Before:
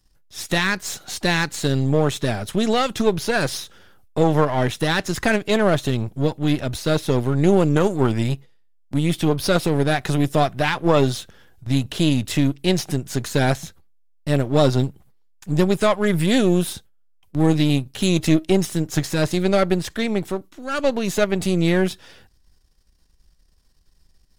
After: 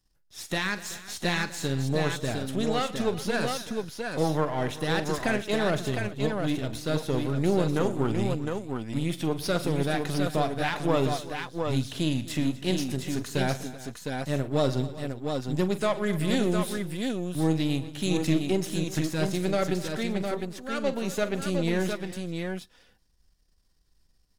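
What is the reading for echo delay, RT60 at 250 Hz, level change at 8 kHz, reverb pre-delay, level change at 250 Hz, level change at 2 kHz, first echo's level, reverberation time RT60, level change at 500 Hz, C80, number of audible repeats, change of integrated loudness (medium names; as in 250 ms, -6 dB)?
44 ms, no reverb, -7.0 dB, no reverb, -7.0 dB, -7.0 dB, -13.5 dB, no reverb, -7.0 dB, no reverb, 5, -7.5 dB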